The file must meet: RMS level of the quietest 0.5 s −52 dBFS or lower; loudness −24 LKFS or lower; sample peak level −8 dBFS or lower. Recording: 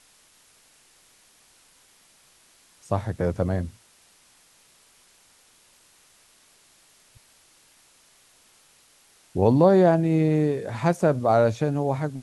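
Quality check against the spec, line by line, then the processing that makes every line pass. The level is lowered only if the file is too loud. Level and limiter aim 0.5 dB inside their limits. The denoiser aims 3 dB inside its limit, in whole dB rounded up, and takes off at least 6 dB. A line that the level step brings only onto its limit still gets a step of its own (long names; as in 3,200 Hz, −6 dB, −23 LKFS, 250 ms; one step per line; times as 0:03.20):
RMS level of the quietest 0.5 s −58 dBFS: in spec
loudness −22.0 LKFS: out of spec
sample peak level −6.0 dBFS: out of spec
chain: level −2.5 dB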